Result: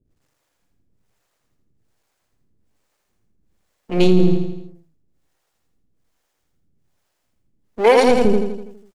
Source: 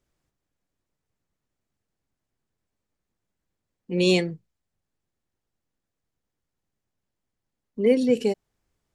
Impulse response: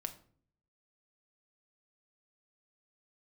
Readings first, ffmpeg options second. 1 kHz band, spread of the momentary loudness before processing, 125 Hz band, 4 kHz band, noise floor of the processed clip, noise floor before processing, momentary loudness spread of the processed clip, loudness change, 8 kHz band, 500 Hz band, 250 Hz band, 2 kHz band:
+22.0 dB, 14 LU, +9.5 dB, +2.0 dB, -72 dBFS, -84 dBFS, 15 LU, +7.0 dB, n/a, +7.5 dB, +6.0 dB, +7.0 dB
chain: -filter_complex "[0:a]aeval=exprs='if(lt(val(0),0),0.251*val(0),val(0))':c=same,acrossover=split=410[a][b];[a]aeval=exprs='val(0)*(1-1/2+1/2*cos(2*PI*1.2*n/s))':c=same[c];[b]aeval=exprs='val(0)*(1-1/2-1/2*cos(2*PI*1.2*n/s))':c=same[d];[c][d]amix=inputs=2:normalize=0,aeval=exprs='0.158*(cos(1*acos(clip(val(0)/0.158,-1,1)))-cos(1*PI/2))+0.00355*(cos(7*acos(clip(val(0)/0.158,-1,1)))-cos(7*PI/2))':c=same,asplit=2[e][f];[f]aecho=0:1:82|164|246|328|410|492|574:0.562|0.298|0.158|0.0837|0.0444|0.0235|0.0125[g];[e][g]amix=inputs=2:normalize=0,alimiter=level_in=20.5dB:limit=-1dB:release=50:level=0:latency=1,volume=-3dB"

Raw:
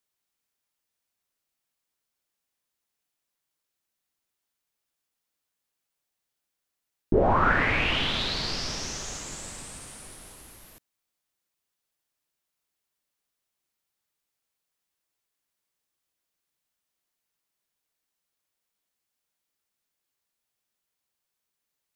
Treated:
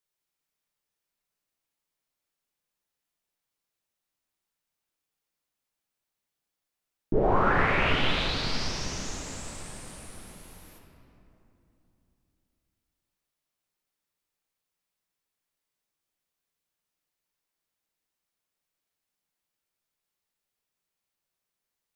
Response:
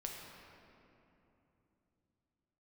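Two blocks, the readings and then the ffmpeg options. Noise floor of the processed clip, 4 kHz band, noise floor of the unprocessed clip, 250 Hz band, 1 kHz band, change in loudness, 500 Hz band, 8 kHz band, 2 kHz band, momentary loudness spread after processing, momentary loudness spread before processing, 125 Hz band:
under -85 dBFS, -2.5 dB, -84 dBFS, -0.5 dB, -1.0 dB, -1.5 dB, -0.5 dB, -3.0 dB, -1.5 dB, 20 LU, 21 LU, 0.0 dB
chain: -filter_complex "[1:a]atrim=start_sample=2205[a];[0:a][a]afir=irnorm=-1:irlink=0"

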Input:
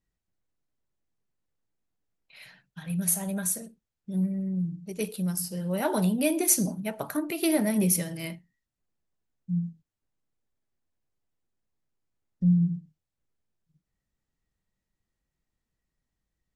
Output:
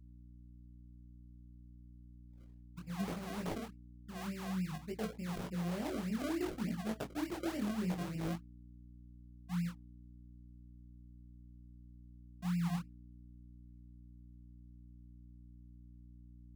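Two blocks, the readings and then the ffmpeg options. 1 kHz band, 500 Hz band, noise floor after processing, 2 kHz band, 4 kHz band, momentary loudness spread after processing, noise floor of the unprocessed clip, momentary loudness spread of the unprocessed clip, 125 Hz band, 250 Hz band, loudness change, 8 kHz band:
-7.0 dB, -11.0 dB, -56 dBFS, -8.5 dB, -9.5 dB, 20 LU, under -85 dBFS, 11 LU, -10.0 dB, -10.5 dB, -12.0 dB, -25.5 dB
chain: -filter_complex "[0:a]anlmdn=2.51,acrossover=split=430[a][b];[b]acompressor=threshold=-40dB:ratio=4[c];[a][c]amix=inputs=2:normalize=0,acrusher=samples=34:mix=1:aa=0.000001:lfo=1:lforange=34:lforate=3.4,areverse,acompressor=threshold=-39dB:ratio=8,areverse,flanger=delay=18:depth=6:speed=0.59,aeval=exprs='val(0)+0.00126*(sin(2*PI*60*n/s)+sin(2*PI*2*60*n/s)/2+sin(2*PI*3*60*n/s)/3+sin(2*PI*4*60*n/s)/4+sin(2*PI*5*60*n/s)/5)':c=same,adynamicequalizer=threshold=0.00158:dfrequency=370:dqfactor=0.71:tfrequency=370:tqfactor=0.71:attack=5:release=100:ratio=0.375:range=2:mode=boostabove:tftype=bell,volume=4dB"

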